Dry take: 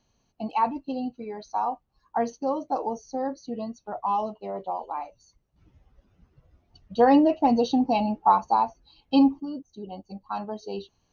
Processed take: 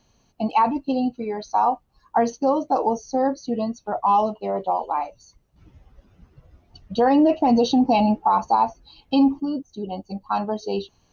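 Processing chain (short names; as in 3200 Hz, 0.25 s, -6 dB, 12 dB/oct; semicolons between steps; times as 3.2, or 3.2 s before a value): limiter -18 dBFS, peak gain reduction 10 dB; gain +8 dB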